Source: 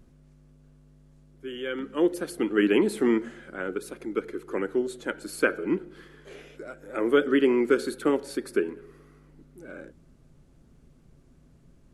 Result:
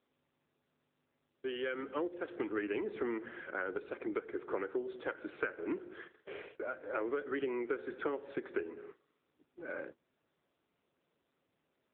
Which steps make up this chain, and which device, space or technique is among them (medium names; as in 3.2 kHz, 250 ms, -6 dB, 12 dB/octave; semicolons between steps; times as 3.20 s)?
gate -48 dBFS, range -19 dB; 1.46–3.38 s: dynamic bell 3.1 kHz, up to -4 dB, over -50 dBFS, Q 6; voicemail (band-pass 430–2900 Hz; compression 10:1, threshold -36 dBFS, peak gain reduction 18 dB; trim +3.5 dB; AMR-NB 7.95 kbps 8 kHz)